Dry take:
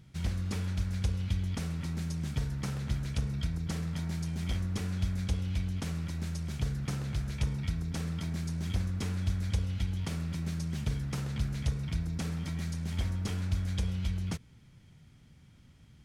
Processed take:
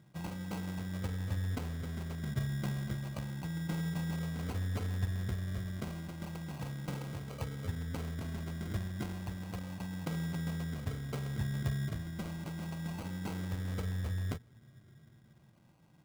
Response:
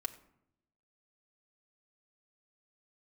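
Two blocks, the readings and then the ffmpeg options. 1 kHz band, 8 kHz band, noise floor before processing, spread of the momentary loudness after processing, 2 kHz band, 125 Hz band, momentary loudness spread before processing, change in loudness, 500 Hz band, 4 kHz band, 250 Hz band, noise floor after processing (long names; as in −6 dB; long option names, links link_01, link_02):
+0.5 dB, −6.5 dB, −57 dBFS, 6 LU, −0.5 dB, −4.5 dB, 3 LU, −4.0 dB, +0.5 dB, −6.0 dB, −2.5 dB, −62 dBFS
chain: -af "afftfilt=real='re*pow(10,17/40*sin(2*PI*(1.3*log(max(b,1)*sr/1024/100)/log(2)-(-0.32)*(pts-256)/sr)))':imag='im*pow(10,17/40*sin(2*PI*(1.3*log(max(b,1)*sr/1024/100)/log(2)-(-0.32)*(pts-256)/sr)))':win_size=1024:overlap=0.75,highpass=frequency=90:width=0.5412,highpass=frequency=90:width=1.3066,acrusher=samples=25:mix=1:aa=0.000001,volume=-5dB"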